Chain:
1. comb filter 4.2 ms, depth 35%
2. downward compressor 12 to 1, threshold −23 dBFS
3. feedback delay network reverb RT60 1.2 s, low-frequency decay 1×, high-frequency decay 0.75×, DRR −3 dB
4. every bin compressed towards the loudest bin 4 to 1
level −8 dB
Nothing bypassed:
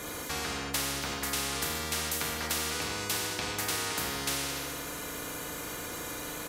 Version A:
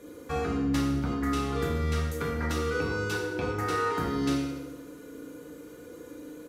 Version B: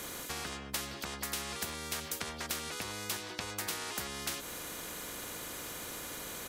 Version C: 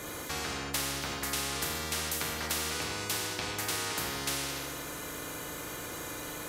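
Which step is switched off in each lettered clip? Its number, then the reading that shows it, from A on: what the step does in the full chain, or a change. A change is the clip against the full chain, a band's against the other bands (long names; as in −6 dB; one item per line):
4, 8 kHz band −18.0 dB
3, change in crest factor +4.5 dB
1, change in integrated loudness −1.5 LU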